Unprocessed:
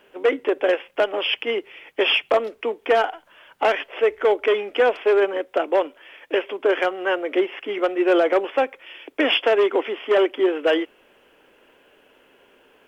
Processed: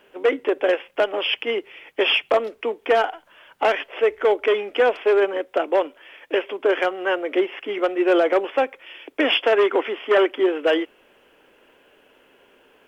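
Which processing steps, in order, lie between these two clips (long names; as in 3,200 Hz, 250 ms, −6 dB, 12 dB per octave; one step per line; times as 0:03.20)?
0:09.52–0:10.43: dynamic equaliser 1,500 Hz, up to +5 dB, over −34 dBFS, Q 1.2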